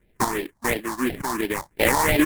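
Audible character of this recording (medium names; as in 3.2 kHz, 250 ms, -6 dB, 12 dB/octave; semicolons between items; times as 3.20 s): aliases and images of a low sample rate 1.4 kHz, jitter 20%; phasing stages 4, 2.9 Hz, lowest notch 420–1100 Hz; random-step tremolo 4.1 Hz; Nellymoser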